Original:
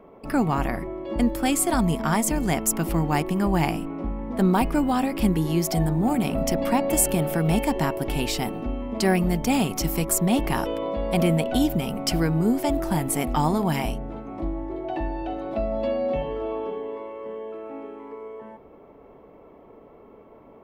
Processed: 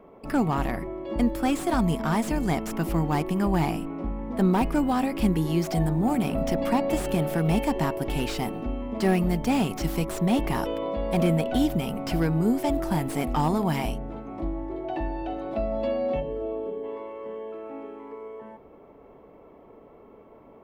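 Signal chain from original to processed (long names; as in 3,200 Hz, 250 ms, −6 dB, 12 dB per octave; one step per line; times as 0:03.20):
gain on a spectral selection 0:16.20–0:16.84, 670–7,000 Hz −9 dB
slew-rate limiting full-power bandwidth 110 Hz
level −1.5 dB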